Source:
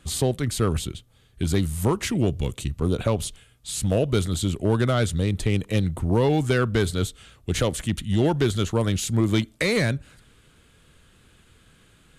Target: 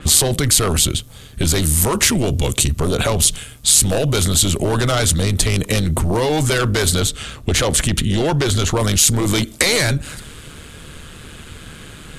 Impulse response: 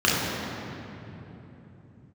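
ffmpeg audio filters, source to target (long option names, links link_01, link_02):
-filter_complex "[0:a]asettb=1/sr,asplit=3[link_01][link_02][link_03];[link_01]atrim=end=7.004[link_04];[link_02]atrim=start=7:end=8.77,asetpts=PTS-STARTPTS,afade=type=in:duration=0.004:curve=qsin,afade=type=out:start_time=1.766:duration=0.004:curve=qsin,highshelf=frequency=5600:gain=-9[link_05];[link_03]atrim=start=8.766[link_06];[link_04][link_05]acrossfade=duration=0.004:curve1=hsin:curve2=qsin[link_07];[link_07][link_06]acrossfade=duration=0.004:curve1=qsin:curve2=hsin,apsyclip=27.5dB,dynaudnorm=framelen=370:gausssize=7:maxgain=5dB,tremolo=f=150:d=0.519,acompressor=threshold=-9dB:ratio=16,adynamicequalizer=threshold=0.0316:dfrequency=4200:dqfactor=0.7:tfrequency=4200:tqfactor=0.7:attack=5:release=100:ratio=0.375:range=3.5:mode=boostabove:tftype=highshelf,volume=-5dB"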